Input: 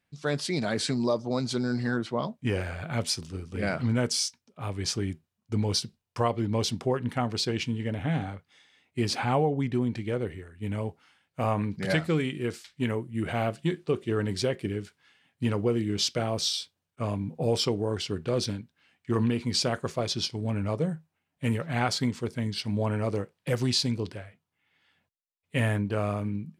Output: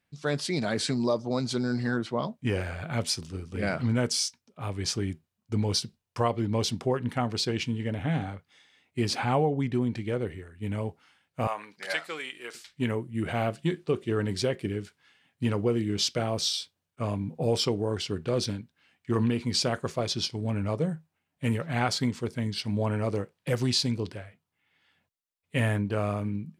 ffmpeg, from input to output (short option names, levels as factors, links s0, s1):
-filter_complex "[0:a]asettb=1/sr,asplit=3[s0][s1][s2];[s0]atrim=end=11.474[s3];[s1]atrim=start=11.47:end=12.55,asetpts=PTS-STARTPTS,afade=t=in:d=0.004:c=qsin,afade=t=out:st=1.076:d=0.004:c=qsin,highpass=810[s4];[s2]atrim=start=12.546[s5];[s3][s4]acrossfade=d=0.004:c1=hsin:c2=qsin[s6];[s6][s5]acrossfade=d=0.004:c1=qsin:c2=hsin"